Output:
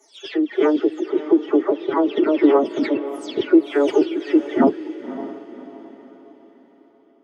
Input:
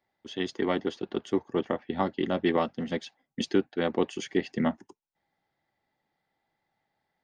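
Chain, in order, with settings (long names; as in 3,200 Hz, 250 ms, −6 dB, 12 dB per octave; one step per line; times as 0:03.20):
every frequency bin delayed by itself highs early, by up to 346 ms
high-pass filter 210 Hz 24 dB per octave
spectral tilt −3 dB per octave
phase-vocoder pitch shift with formants kept +9 semitones
feedback delay with all-pass diffusion 564 ms, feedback 41%, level −13 dB
level +8.5 dB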